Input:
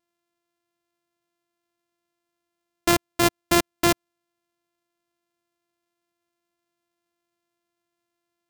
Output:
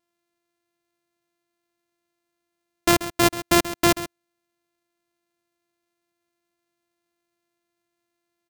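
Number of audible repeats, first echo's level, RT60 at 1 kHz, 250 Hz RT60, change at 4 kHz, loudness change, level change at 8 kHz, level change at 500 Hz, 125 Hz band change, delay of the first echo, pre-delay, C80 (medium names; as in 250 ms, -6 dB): 1, -14.0 dB, no reverb, no reverb, +1.5 dB, +1.5 dB, +1.5 dB, +1.5 dB, +1.5 dB, 134 ms, no reverb, no reverb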